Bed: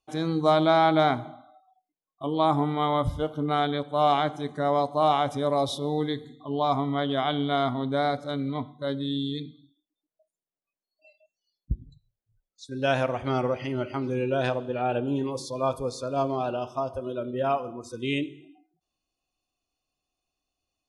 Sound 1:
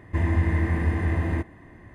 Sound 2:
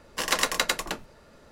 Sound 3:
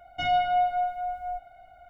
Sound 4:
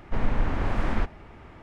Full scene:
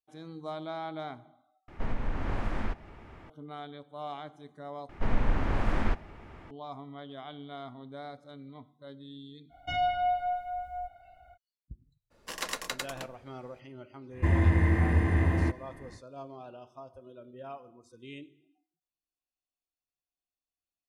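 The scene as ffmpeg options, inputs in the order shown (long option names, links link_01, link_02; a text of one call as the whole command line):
ffmpeg -i bed.wav -i cue0.wav -i cue1.wav -i cue2.wav -i cue3.wav -filter_complex "[4:a]asplit=2[link_01][link_02];[0:a]volume=-17.5dB[link_03];[link_01]acompressor=threshold=-22dB:ratio=3:attack=10:release=766:knee=1:detection=peak[link_04];[3:a]equalizer=frequency=70:width=1.5:gain=9[link_05];[link_03]asplit=3[link_06][link_07][link_08];[link_06]atrim=end=1.684[link_09];[link_04]atrim=end=1.62,asetpts=PTS-STARTPTS,volume=-3dB[link_10];[link_07]atrim=start=3.296:end=4.894[link_11];[link_02]atrim=end=1.62,asetpts=PTS-STARTPTS,volume=-2dB[link_12];[link_08]atrim=start=6.506[link_13];[link_05]atrim=end=1.89,asetpts=PTS-STARTPTS,volume=-4.5dB,afade=type=in:duration=0.05,afade=type=out:start_time=1.84:duration=0.05,adelay=9490[link_14];[2:a]atrim=end=1.51,asetpts=PTS-STARTPTS,volume=-10.5dB,afade=type=in:duration=0.02,afade=type=out:start_time=1.49:duration=0.02,adelay=12100[link_15];[1:a]atrim=end=1.94,asetpts=PTS-STARTPTS,volume=-1dB,afade=type=in:duration=0.1,afade=type=out:start_time=1.84:duration=0.1,adelay=14090[link_16];[link_09][link_10]acrossfade=duration=0.004:curve1=hsin:curve2=hsin[link_17];[link_17][link_11]acrossfade=duration=0.004:curve1=hsin:curve2=hsin[link_18];[link_18][link_12]acrossfade=duration=0.004:curve1=hsin:curve2=hsin[link_19];[link_19][link_13]acrossfade=duration=0.004:curve1=hsin:curve2=hsin[link_20];[link_20][link_14][link_15][link_16]amix=inputs=4:normalize=0" out.wav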